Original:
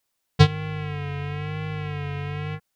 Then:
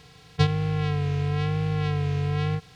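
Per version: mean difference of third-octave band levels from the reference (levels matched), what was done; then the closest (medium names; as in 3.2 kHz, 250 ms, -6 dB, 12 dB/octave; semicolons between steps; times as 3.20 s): 4.0 dB: spectral levelling over time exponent 0.4; trim -7 dB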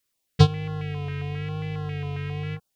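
2.0 dB: step-sequenced notch 7.4 Hz 780–2300 Hz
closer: second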